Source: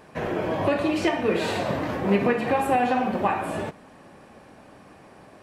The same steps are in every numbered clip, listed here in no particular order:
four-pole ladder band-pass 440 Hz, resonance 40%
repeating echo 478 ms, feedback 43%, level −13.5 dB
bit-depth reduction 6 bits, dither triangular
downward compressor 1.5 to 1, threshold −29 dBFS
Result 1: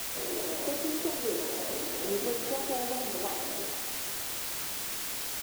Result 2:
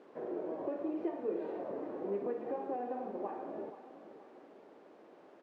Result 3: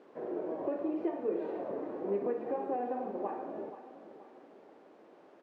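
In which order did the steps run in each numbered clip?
four-pole ladder band-pass, then downward compressor, then bit-depth reduction, then repeating echo
downward compressor, then repeating echo, then bit-depth reduction, then four-pole ladder band-pass
repeating echo, then bit-depth reduction, then four-pole ladder band-pass, then downward compressor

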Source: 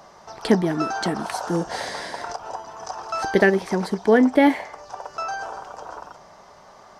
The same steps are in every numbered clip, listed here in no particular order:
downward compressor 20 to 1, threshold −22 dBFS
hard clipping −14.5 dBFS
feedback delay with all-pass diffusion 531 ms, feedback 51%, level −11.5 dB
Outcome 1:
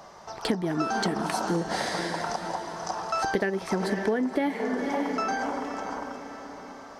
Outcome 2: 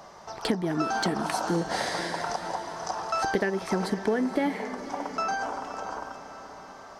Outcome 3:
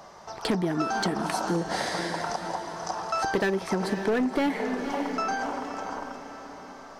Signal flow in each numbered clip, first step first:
feedback delay with all-pass diffusion, then downward compressor, then hard clipping
downward compressor, then hard clipping, then feedback delay with all-pass diffusion
hard clipping, then feedback delay with all-pass diffusion, then downward compressor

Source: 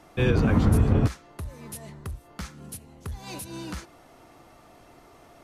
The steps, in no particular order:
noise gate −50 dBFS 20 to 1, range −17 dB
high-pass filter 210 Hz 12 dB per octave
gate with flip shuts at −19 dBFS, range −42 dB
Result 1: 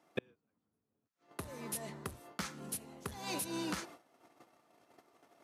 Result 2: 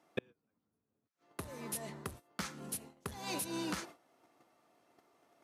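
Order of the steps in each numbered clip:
gate with flip, then noise gate, then high-pass filter
gate with flip, then high-pass filter, then noise gate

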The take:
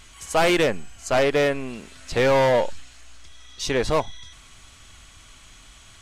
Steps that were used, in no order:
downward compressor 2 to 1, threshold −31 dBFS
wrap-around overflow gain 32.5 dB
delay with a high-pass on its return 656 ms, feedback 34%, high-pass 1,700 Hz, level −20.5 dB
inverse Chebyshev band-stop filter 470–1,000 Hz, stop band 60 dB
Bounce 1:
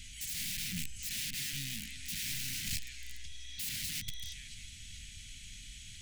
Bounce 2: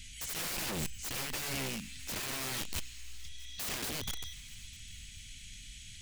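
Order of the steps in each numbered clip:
delay with a high-pass on its return, then downward compressor, then wrap-around overflow, then inverse Chebyshev band-stop filter
inverse Chebyshev band-stop filter, then downward compressor, then wrap-around overflow, then delay with a high-pass on its return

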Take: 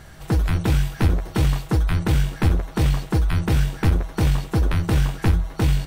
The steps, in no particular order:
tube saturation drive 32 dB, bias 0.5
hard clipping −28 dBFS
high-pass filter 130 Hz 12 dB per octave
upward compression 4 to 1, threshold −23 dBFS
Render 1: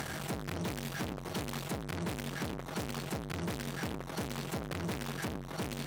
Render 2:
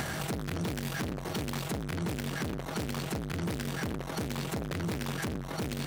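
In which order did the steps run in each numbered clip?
hard clipping, then upward compression, then tube saturation, then high-pass filter
tube saturation, then upward compression, then high-pass filter, then hard clipping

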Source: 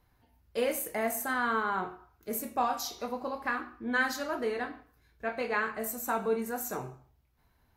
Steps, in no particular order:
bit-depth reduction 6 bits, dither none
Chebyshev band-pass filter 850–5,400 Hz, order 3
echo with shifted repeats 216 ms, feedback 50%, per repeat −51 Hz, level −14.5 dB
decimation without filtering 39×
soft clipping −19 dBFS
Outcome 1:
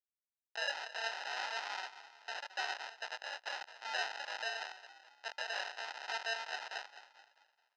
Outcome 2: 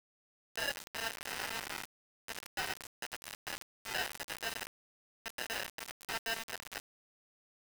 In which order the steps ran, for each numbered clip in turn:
soft clipping, then bit-depth reduction, then echo with shifted repeats, then decimation without filtering, then Chebyshev band-pass filter
decimation without filtering, then echo with shifted repeats, then soft clipping, then Chebyshev band-pass filter, then bit-depth reduction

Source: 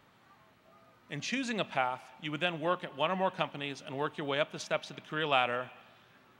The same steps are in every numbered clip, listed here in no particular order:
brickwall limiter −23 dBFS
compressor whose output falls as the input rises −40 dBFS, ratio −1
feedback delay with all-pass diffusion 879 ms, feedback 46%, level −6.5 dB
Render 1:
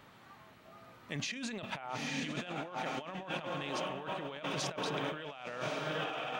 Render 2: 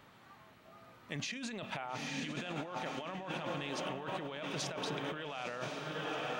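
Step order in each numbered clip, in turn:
feedback delay with all-pass diffusion, then compressor whose output falls as the input rises, then brickwall limiter
brickwall limiter, then feedback delay with all-pass diffusion, then compressor whose output falls as the input rises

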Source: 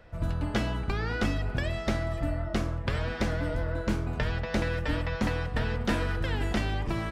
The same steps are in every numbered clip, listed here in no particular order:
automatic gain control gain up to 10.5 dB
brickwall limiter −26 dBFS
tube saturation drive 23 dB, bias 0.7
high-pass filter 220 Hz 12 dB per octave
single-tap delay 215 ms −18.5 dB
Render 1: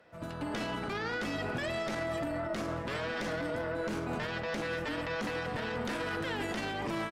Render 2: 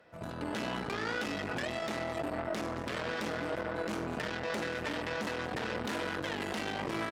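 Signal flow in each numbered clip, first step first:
high-pass filter, then tube saturation, then automatic gain control, then brickwall limiter, then single-tap delay
single-tap delay, then automatic gain control, then tube saturation, then high-pass filter, then brickwall limiter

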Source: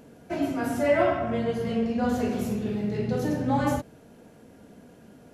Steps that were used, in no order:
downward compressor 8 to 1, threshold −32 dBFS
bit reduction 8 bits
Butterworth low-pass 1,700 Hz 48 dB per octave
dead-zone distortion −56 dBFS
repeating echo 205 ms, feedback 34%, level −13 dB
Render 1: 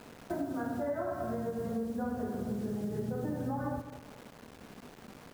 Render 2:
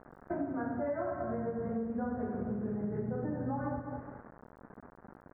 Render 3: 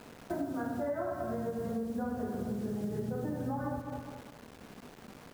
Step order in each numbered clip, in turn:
Butterworth low-pass, then bit reduction, then dead-zone distortion, then downward compressor, then repeating echo
repeating echo, then dead-zone distortion, then bit reduction, then downward compressor, then Butterworth low-pass
Butterworth low-pass, then bit reduction, then dead-zone distortion, then repeating echo, then downward compressor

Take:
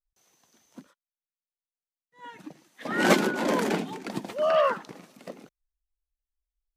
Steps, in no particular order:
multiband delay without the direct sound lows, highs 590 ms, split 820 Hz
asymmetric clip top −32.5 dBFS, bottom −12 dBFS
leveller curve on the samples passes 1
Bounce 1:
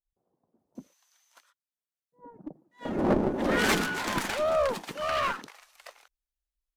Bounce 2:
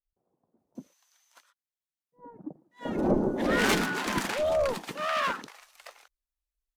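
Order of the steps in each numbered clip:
leveller curve on the samples, then multiband delay without the direct sound, then asymmetric clip
asymmetric clip, then leveller curve on the samples, then multiband delay without the direct sound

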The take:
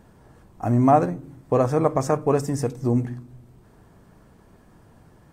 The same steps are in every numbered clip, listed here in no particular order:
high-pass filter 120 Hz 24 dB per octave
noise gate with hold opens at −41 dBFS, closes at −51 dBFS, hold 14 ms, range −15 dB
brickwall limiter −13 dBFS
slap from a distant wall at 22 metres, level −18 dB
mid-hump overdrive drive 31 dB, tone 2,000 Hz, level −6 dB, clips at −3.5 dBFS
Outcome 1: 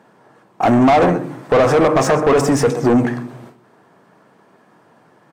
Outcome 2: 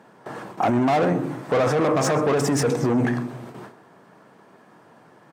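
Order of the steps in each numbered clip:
brickwall limiter, then high-pass filter, then noise gate with hold, then slap from a distant wall, then mid-hump overdrive
noise gate with hold, then mid-hump overdrive, then high-pass filter, then brickwall limiter, then slap from a distant wall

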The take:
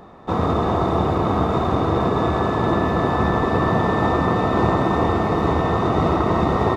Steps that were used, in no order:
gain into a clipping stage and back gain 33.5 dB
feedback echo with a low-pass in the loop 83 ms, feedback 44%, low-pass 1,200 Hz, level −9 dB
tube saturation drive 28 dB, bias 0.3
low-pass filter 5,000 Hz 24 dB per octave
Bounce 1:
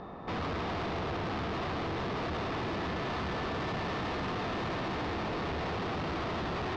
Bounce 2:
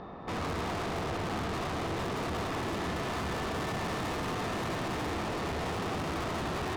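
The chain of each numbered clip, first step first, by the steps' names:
tube saturation, then feedback echo with a low-pass in the loop, then gain into a clipping stage and back, then low-pass filter
low-pass filter, then tube saturation, then gain into a clipping stage and back, then feedback echo with a low-pass in the loop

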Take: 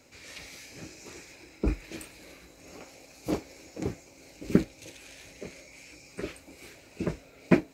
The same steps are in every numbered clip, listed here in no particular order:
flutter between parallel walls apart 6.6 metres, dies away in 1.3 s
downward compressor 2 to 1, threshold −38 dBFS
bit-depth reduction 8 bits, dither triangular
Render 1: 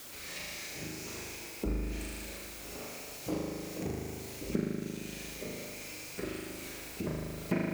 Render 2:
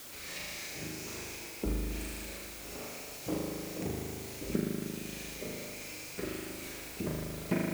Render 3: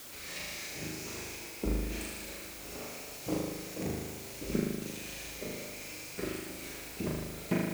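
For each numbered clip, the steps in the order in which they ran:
flutter between parallel walls, then bit-depth reduction, then downward compressor
flutter between parallel walls, then downward compressor, then bit-depth reduction
downward compressor, then flutter between parallel walls, then bit-depth reduction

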